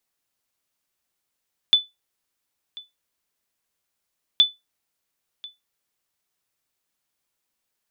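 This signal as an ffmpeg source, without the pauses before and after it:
ffmpeg -f lavfi -i "aevalsrc='0.447*(sin(2*PI*3490*mod(t,2.67))*exp(-6.91*mod(t,2.67)/0.19)+0.075*sin(2*PI*3490*max(mod(t,2.67)-1.04,0))*exp(-6.91*max(mod(t,2.67)-1.04,0)/0.19))':duration=5.34:sample_rate=44100" out.wav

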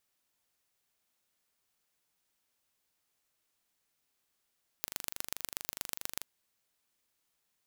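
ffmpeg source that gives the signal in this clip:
ffmpeg -f lavfi -i "aevalsrc='0.473*eq(mod(n,1785),0)*(0.5+0.5*eq(mod(n,5355),0))':duration=1.4:sample_rate=44100" out.wav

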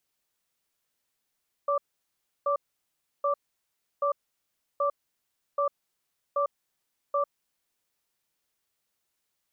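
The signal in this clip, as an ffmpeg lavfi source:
ffmpeg -f lavfi -i "aevalsrc='0.0531*(sin(2*PI*569*t)+sin(2*PI*1170*t))*clip(min(mod(t,0.78),0.1-mod(t,0.78))/0.005,0,1)':duration=6.12:sample_rate=44100" out.wav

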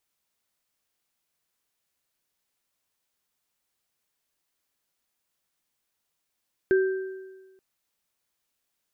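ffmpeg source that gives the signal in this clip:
ffmpeg -f lavfi -i "aevalsrc='0.158*pow(10,-3*t/1.32)*sin(2*PI*380*t)+0.0447*pow(10,-3*t/1.12)*sin(2*PI*1570*t)':duration=0.88:sample_rate=44100" out.wav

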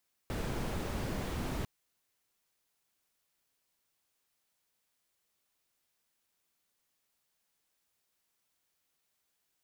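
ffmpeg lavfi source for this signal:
ffmpeg -f lavfi -i "anoisesrc=color=brown:amplitude=0.0785:duration=1.35:sample_rate=44100:seed=1" out.wav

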